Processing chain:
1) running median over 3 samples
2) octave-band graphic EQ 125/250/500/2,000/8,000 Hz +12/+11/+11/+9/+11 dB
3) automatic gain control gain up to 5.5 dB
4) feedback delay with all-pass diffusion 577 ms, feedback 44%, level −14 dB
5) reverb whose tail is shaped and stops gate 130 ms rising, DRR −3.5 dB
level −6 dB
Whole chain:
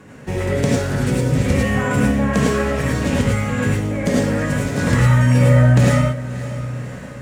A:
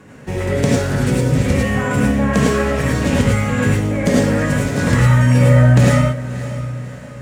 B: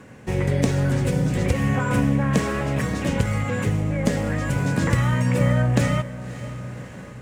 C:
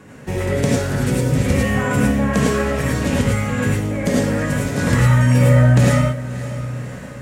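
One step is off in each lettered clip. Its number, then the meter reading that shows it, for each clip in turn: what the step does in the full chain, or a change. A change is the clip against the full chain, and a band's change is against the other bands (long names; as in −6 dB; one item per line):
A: 3, change in integrated loudness +2.0 LU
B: 5, change in integrated loudness −4.5 LU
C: 1, 8 kHz band +1.5 dB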